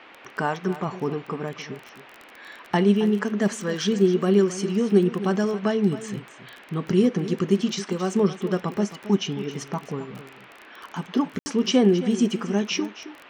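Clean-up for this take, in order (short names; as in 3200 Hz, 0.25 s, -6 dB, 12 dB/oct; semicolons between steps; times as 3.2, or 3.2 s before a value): de-click; room tone fill 11.39–11.46; noise print and reduce 20 dB; inverse comb 0.269 s -14 dB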